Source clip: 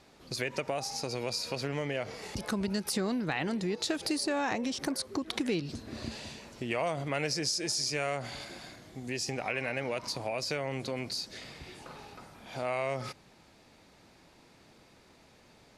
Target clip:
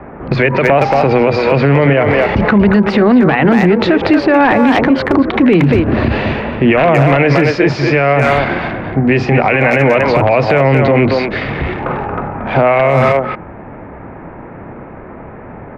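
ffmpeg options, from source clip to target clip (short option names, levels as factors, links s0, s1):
-filter_complex "[0:a]acrossover=split=220|440|1900[s0][s1][s2][s3];[s0]asplit=2[s4][s5];[s5]adelay=29,volume=0.794[s6];[s4][s6]amix=inputs=2:normalize=0[s7];[s2]aeval=exprs='(mod(20*val(0)+1,2)-1)/20':c=same[s8];[s3]acrusher=bits=7:mix=0:aa=0.000001[s9];[s7][s1][s8][s9]amix=inputs=4:normalize=0,lowpass=f=2400:w=0.5412,lowpass=f=2400:w=1.3066,asplit=2[s10][s11];[s11]adelay=230,highpass=300,lowpass=3400,asoftclip=type=hard:threshold=0.0447,volume=0.501[s12];[s10][s12]amix=inputs=2:normalize=0,alimiter=level_in=31.6:limit=0.891:release=50:level=0:latency=1,volume=0.891"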